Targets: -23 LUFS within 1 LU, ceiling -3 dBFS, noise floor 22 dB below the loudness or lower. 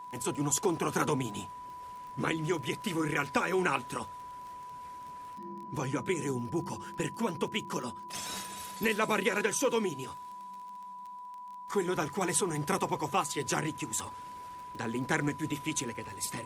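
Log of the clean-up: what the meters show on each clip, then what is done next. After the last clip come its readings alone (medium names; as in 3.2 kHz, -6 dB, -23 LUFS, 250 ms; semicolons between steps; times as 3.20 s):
tick rate 23 per s; steady tone 990 Hz; tone level -42 dBFS; loudness -32.5 LUFS; peak level -14.0 dBFS; loudness target -23.0 LUFS
-> de-click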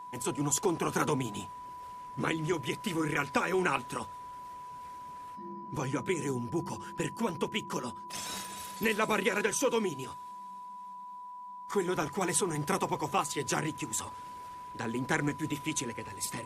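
tick rate 0 per s; steady tone 990 Hz; tone level -42 dBFS
-> band-stop 990 Hz, Q 30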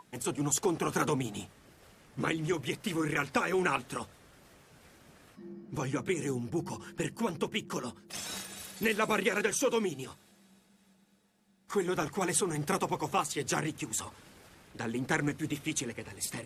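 steady tone not found; loudness -32.5 LUFS; peak level -14.5 dBFS; loudness target -23.0 LUFS
-> trim +9.5 dB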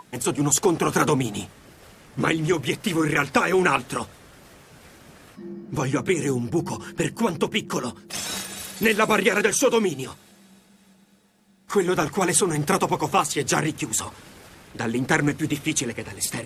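loudness -23.0 LUFS; peak level -5.0 dBFS; noise floor -56 dBFS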